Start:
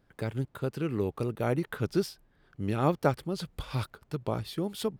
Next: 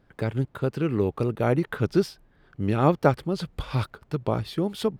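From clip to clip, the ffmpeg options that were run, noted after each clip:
ffmpeg -i in.wav -af "highshelf=frequency=5700:gain=-9.5,volume=6dB" out.wav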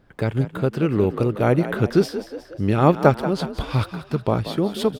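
ffmpeg -i in.wav -filter_complex "[0:a]asplit=6[link_01][link_02][link_03][link_04][link_05][link_06];[link_02]adelay=182,afreqshift=50,volume=-12dB[link_07];[link_03]adelay=364,afreqshift=100,volume=-17.8dB[link_08];[link_04]adelay=546,afreqshift=150,volume=-23.7dB[link_09];[link_05]adelay=728,afreqshift=200,volume=-29.5dB[link_10];[link_06]adelay=910,afreqshift=250,volume=-35.4dB[link_11];[link_01][link_07][link_08][link_09][link_10][link_11]amix=inputs=6:normalize=0,volume=4.5dB" out.wav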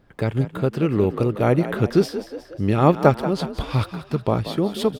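ffmpeg -i in.wav -af "bandreject=frequency=1500:width=21" out.wav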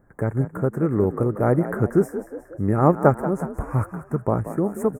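ffmpeg -i in.wav -af "asuperstop=centerf=3700:order=8:qfactor=0.69,volume=-1dB" out.wav

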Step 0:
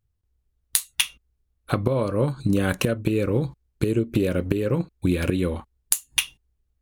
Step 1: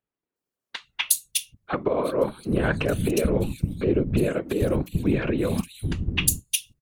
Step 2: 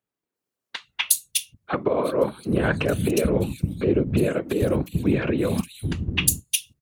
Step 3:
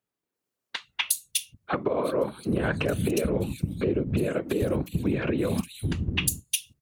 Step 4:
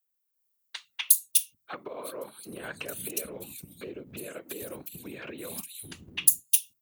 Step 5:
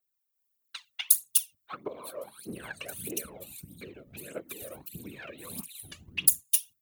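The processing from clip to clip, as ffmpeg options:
ffmpeg -i in.wav -filter_complex "[0:a]acrossover=split=200|3300[link_01][link_02][link_03];[link_03]adelay=360[link_04];[link_01]adelay=790[link_05];[link_05][link_02][link_04]amix=inputs=3:normalize=0,afftfilt=real='hypot(re,im)*cos(2*PI*random(0))':imag='hypot(re,im)*sin(2*PI*random(1))':win_size=512:overlap=0.75,volume=7dB" out.wav
ffmpeg -i in.wav -af "highpass=63,volume=1.5dB" out.wav
ffmpeg -i in.wav -af "acompressor=threshold=-23dB:ratio=3" out.wav
ffmpeg -i in.wav -af "aemphasis=mode=production:type=riaa,volume=-10.5dB" out.wav
ffmpeg -i in.wav -af "aphaser=in_gain=1:out_gain=1:delay=1.8:decay=0.67:speed=1.6:type=triangular,volume=-4.5dB" out.wav

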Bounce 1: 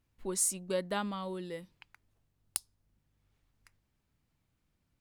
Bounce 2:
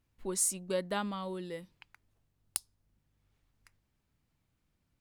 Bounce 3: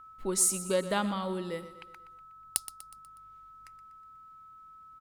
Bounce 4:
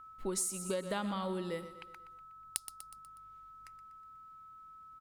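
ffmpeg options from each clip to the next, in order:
ffmpeg -i in.wav -af anull out.wav
ffmpeg -i in.wav -af "aeval=exprs='val(0)+0.00224*sin(2*PI*1300*n/s)':channel_layout=same,aecho=1:1:122|244|366|488|610:0.2|0.0998|0.0499|0.0249|0.0125,volume=4.5dB" out.wav
ffmpeg -i in.wav -af "acompressor=threshold=-30dB:ratio=12,volume=-1.5dB" out.wav

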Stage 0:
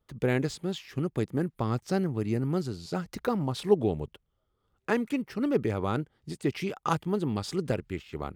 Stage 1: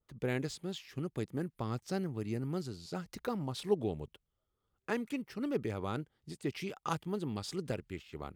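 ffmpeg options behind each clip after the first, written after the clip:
ffmpeg -i in.wav -af "adynamicequalizer=threshold=0.00562:dfrequency=2300:dqfactor=0.7:tfrequency=2300:tqfactor=0.7:attack=5:release=100:ratio=0.375:range=2:mode=boostabove:tftype=highshelf,volume=-8dB" out.wav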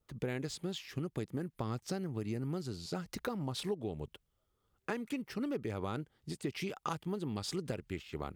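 ffmpeg -i in.wav -af "acompressor=threshold=-38dB:ratio=6,volume=4.5dB" out.wav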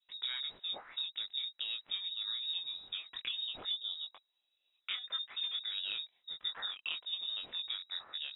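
ffmpeg -i in.wav -af "flanger=delay=19.5:depth=3.4:speed=1.7,lowpass=frequency=3300:width_type=q:width=0.5098,lowpass=frequency=3300:width_type=q:width=0.6013,lowpass=frequency=3300:width_type=q:width=0.9,lowpass=frequency=3300:width_type=q:width=2.563,afreqshift=-3900,volume=1.5dB" out.wav

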